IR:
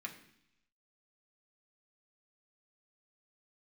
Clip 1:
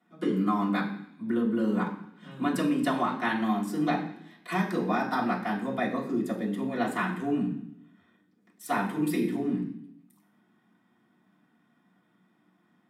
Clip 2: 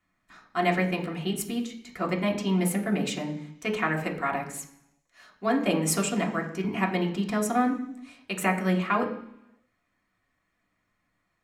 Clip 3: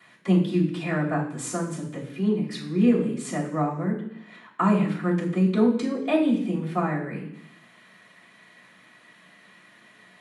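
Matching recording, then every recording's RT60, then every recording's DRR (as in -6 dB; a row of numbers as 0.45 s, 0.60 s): 2; 0.70 s, 0.70 s, 0.70 s; -8.0 dB, -0.5 dB, -14.5 dB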